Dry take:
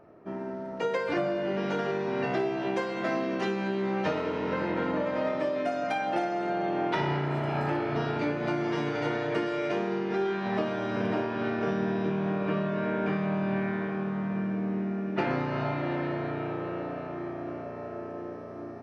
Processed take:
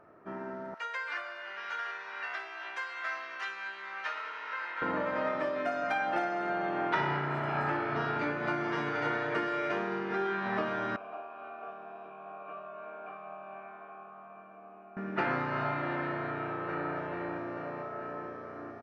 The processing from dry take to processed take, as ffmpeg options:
-filter_complex "[0:a]asettb=1/sr,asplit=3[a][b][c];[a]atrim=end=0.744[d];[b]atrim=start=0.74:end=4.82,asetpts=PTS-STARTPTS,afade=t=in:d=0.004:c=qsin,afade=t=out:st=4.076:d=0.004:c=qsin,highpass=1.4k[e];[c]atrim=start=4.816[f];[d][e]acrossfade=d=0.004:c1=hsin:c2=qsin[g];[g][f]acrossfade=d=0.004:c1=qsin:c2=hsin,asettb=1/sr,asplit=3[h][i][j];[h]atrim=end=10.964[k];[i]atrim=start=10.96:end=14.97,asetpts=PTS-STARTPTS,afade=t=in:d=0.004:c=qsin,afade=t=out:st=4.006:d=0.004:c=qsin,asplit=3[l][m][n];[l]bandpass=f=730:t=q:w=8,volume=0dB[o];[m]bandpass=f=1.09k:t=q:w=8,volume=-6dB[p];[n]bandpass=f=2.44k:t=q:w=8,volume=-9dB[q];[o][p][q]amix=inputs=3:normalize=0[r];[j]atrim=start=14.966[s];[k][r]acrossfade=d=0.004:c1=hsin:c2=qsin[t];[t][s]acrossfade=d=0.004:c1=qsin:c2=hsin,asplit=2[u][v];[v]afade=t=in:st=16.24:d=0.01,afade=t=out:st=16.94:d=0.01,aecho=0:1:440|880|1320|1760|2200|2640|3080|3520|3960:0.749894|0.449937|0.269962|0.161977|0.0971863|0.0583118|0.0349871|0.0209922|0.0125953[w];[u][w]amix=inputs=2:normalize=0,equalizer=f=1.4k:w=0.99:g=11,volume=-6.5dB"

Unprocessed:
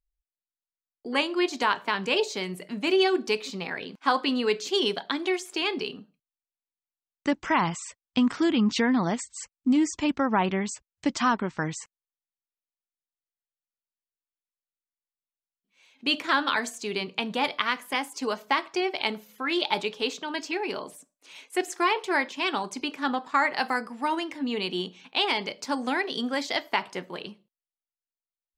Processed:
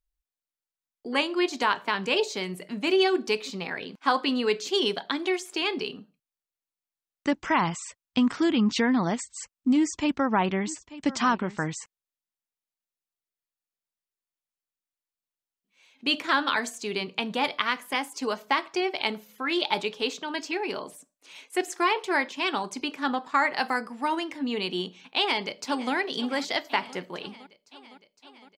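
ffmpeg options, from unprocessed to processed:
-filter_complex "[0:a]asplit=3[a][b][c];[a]afade=t=out:st=10.66:d=0.02[d];[b]aecho=1:1:888:0.141,afade=t=in:st=10.66:d=0.02,afade=t=out:st=11.8:d=0.02[e];[c]afade=t=in:st=11.8:d=0.02[f];[d][e][f]amix=inputs=3:normalize=0,asplit=2[g][h];[h]afade=t=in:st=25.16:d=0.01,afade=t=out:st=25.93:d=0.01,aecho=0:1:510|1020|1530|2040|2550|3060|3570|4080|4590|5100:0.149624|0.112218|0.0841633|0.0631224|0.0473418|0.0355064|0.0266298|0.0199723|0.0149793|0.0112344[i];[g][i]amix=inputs=2:normalize=0"

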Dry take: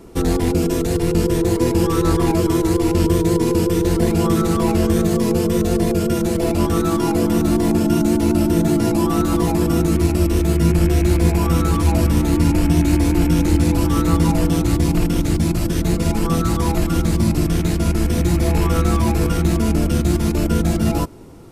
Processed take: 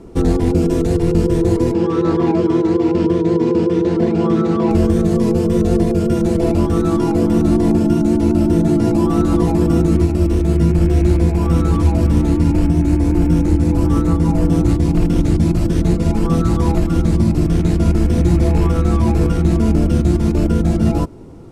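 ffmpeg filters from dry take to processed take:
-filter_complex "[0:a]asettb=1/sr,asplit=3[a][b][c];[a]atrim=end=1.744[d];[b]atrim=start=1.74:end=4.71,asetpts=PTS-STARTPTS,afade=t=in:d=0.004:c=qsin,afade=t=out:st=2.966:d=0.004:c=qsin,highpass=170,lowpass=4.2k[e];[c]atrim=start=4.706[f];[d][e]acrossfade=d=0.004:c1=hsin:c2=qsin[g];[g][f]acrossfade=d=0.004:c1=qsin:c2=hsin,asettb=1/sr,asplit=3[h][i][j];[h]atrim=end=12.664[k];[i]atrim=start=12.66:end=14.69,asetpts=PTS-STARTPTS,afade=t=in:d=0.004:c=qsin,afade=t=out:st=2.026:d=0.004:c=qsin,equalizer=f=3.5k:t=o:w=1.2:g=-4[l];[j]atrim=start=14.686[m];[k][l]acrossfade=d=0.004:c1=hsin:c2=qsin[n];[n][m]acrossfade=d=0.004:c1=qsin:c2=hsin,alimiter=limit=-7.5dB:level=0:latency=1:release=489,lowpass=9.7k,tiltshelf=f=970:g=4.5"

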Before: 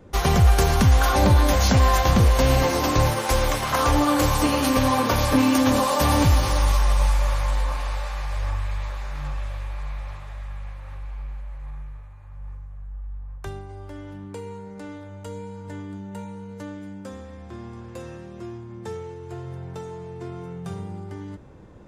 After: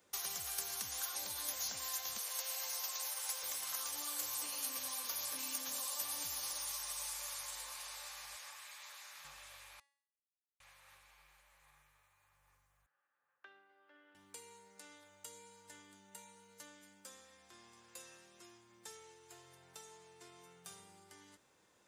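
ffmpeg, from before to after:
-filter_complex "[0:a]asettb=1/sr,asplit=3[a][b][c];[a]atrim=end=2.184[d];[b]atrim=start=2.18:end=3.43,asetpts=PTS-STARTPTS,afade=t=in:d=0.004:c=qsin,afade=t=out:st=1.246:d=0.004:c=qsin,highpass=f=520:w=0.5412,highpass=f=520:w=1.3066[e];[c]atrim=start=3.426[f];[d][e]acrossfade=d=0.004:c1=hsin:c2=qsin[g];[g][f]acrossfade=d=0.004:c1=qsin:c2=hsin,asettb=1/sr,asplit=3[h][i][j];[h]atrim=end=8.364[k];[i]atrim=start=8.36:end=9.25,asetpts=PTS-STARTPTS,afade=t=in:d=0.004:c=qsin,afade=t=out:st=0.886:d=0.004:c=qsin,highpass=f=730:p=1[l];[j]atrim=start=9.246[m];[k][l]acrossfade=d=0.004:c1=hsin:c2=qsin[n];[n][m]acrossfade=d=0.004:c1=qsin:c2=hsin,asettb=1/sr,asplit=3[o][p][q];[o]atrim=end=12.864[r];[p]atrim=start=12.86:end=14.15,asetpts=PTS-STARTPTS,afade=t=in:d=0.004:c=qsin,afade=t=out:st=1.286:d=0.004:c=qsin,highpass=f=250:w=0.5412,highpass=f=250:w=1.3066,equalizer=f=250:t=q:w=4:g=-5,equalizer=f=410:t=q:w=4:g=-6,equalizer=f=720:t=q:w=4:g=-7,equalizer=f=1k:t=q:w=4:g=-9,equalizer=f=1.6k:t=q:w=4:g=3,equalizer=f=2.2k:t=q:w=4:g=-8,lowpass=f=2.5k:w=0.5412,lowpass=f=2.5k:w=1.3066[s];[q]atrim=start=14.146[t];[r][s]acrossfade=d=0.004:c1=hsin:c2=qsin[u];[u][t]acrossfade=d=0.004:c1=qsin:c2=hsin,asplit=3[v][w][x];[v]atrim=end=9.8,asetpts=PTS-STARTPTS,afade=t=out:st=9.796:d=0.004:c=hsin[y];[w]atrim=start=9.8:end=10.6,asetpts=PTS-STARTPTS,volume=0[z];[x]atrim=start=10.6,asetpts=PTS-STARTPTS,afade=t=in:d=0.004:c=hsin[aa];[y][z][aa]concat=n=3:v=0:a=1,aderivative,acrossover=split=1700|4000[ab][ac][ad];[ab]acompressor=threshold=-53dB:ratio=4[ae];[ac]acompressor=threshold=-56dB:ratio=4[af];[ad]acompressor=threshold=-40dB:ratio=4[ag];[ae][af][ag]amix=inputs=3:normalize=0,bandreject=f=280.8:t=h:w=4,bandreject=f=561.6:t=h:w=4,bandreject=f=842.4:t=h:w=4,bandreject=f=1.1232k:t=h:w=4,bandreject=f=1.404k:t=h:w=4,bandreject=f=1.6848k:t=h:w=4,bandreject=f=1.9656k:t=h:w=4,bandreject=f=2.2464k:t=h:w=4,bandreject=f=2.5272k:t=h:w=4,bandreject=f=2.808k:t=h:w=4,bandreject=f=3.0888k:t=h:w=4,bandreject=f=3.3696k:t=h:w=4,bandreject=f=3.6504k:t=h:w=4,bandreject=f=3.9312k:t=h:w=4,bandreject=f=4.212k:t=h:w=4,bandreject=f=4.4928k:t=h:w=4,bandreject=f=4.7736k:t=h:w=4,bandreject=f=5.0544k:t=h:w=4,bandreject=f=5.3352k:t=h:w=4,bandreject=f=5.616k:t=h:w=4,bandreject=f=5.8968k:t=h:w=4,bandreject=f=6.1776k:t=h:w=4,bandreject=f=6.4584k:t=h:w=4,bandreject=f=6.7392k:t=h:w=4,bandreject=f=7.02k:t=h:w=4,bandreject=f=7.3008k:t=h:w=4,bandreject=f=7.5816k:t=h:w=4,bandreject=f=7.8624k:t=h:w=4,bandreject=f=8.1432k:t=h:w=4,bandreject=f=8.424k:t=h:w=4,bandreject=f=8.7048k:t=h:w=4,bandreject=f=8.9856k:t=h:w=4,bandreject=f=9.2664k:t=h:w=4,bandreject=f=9.5472k:t=h:w=4,bandreject=f=9.828k:t=h:w=4,bandreject=f=10.1088k:t=h:w=4,bandreject=f=10.3896k:t=h:w=4"

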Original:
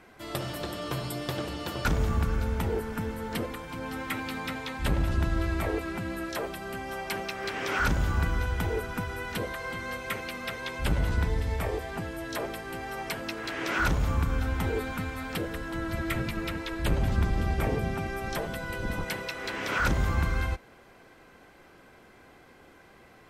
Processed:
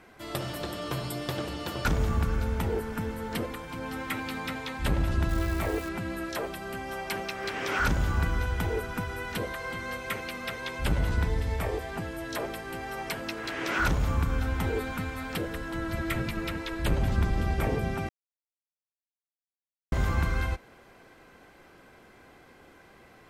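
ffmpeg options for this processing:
-filter_complex "[0:a]asettb=1/sr,asplit=3[a][b][c];[a]atrim=end=5.294[d];[b]atrim=start=5.29:end=5.89,asetpts=PTS-STARTPTS,afade=t=in:d=0.004:c=qsin,afade=t=out:st=0.596:d=0.004:c=qsin,acrusher=bits=8:dc=4:mix=0:aa=0.000001[e];[c]atrim=start=5.886[f];[d][e]acrossfade=d=0.004:c1=hsin:c2=qsin[g];[g][f]acrossfade=d=0.004:c1=qsin:c2=hsin,asplit=3[h][i][j];[h]atrim=end=18.09,asetpts=PTS-STARTPTS,afade=t=out:st=18.086:d=0.004:c=hsin[k];[i]atrim=start=18.09:end=19.92,asetpts=PTS-STARTPTS,volume=0[l];[j]atrim=start=19.92,asetpts=PTS-STARTPTS,afade=t=in:d=0.004:c=hsin[m];[k][l][m]concat=n=3:v=0:a=1"

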